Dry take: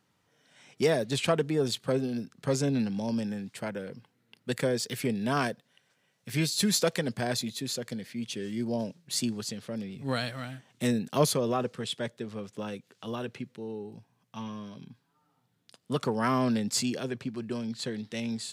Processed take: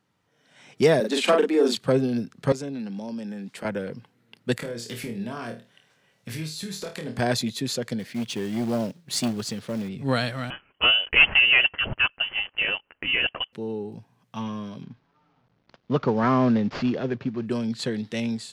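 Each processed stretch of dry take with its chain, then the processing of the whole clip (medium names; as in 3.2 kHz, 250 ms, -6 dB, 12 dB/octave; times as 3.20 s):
1.00–1.77 s: Chebyshev high-pass 180 Hz, order 10 + doubling 41 ms -3.5 dB
2.52–3.65 s: high-pass 160 Hz 24 dB/octave + compression 3:1, threshold -40 dBFS
4.57–7.19 s: compression 10:1, threshold -37 dBFS + flutter echo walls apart 4.4 m, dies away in 0.29 s
7.99–9.89 s: short-mantissa float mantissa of 2-bit + transformer saturation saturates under 510 Hz
10.50–13.53 s: high-pass 310 Hz + waveshaping leveller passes 2 + frequency inversion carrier 3.2 kHz
14.83–17.46 s: CVSD coder 32 kbps + low-pass 1.9 kHz 6 dB/octave
whole clip: treble shelf 4.6 kHz -6 dB; level rider gain up to 7 dB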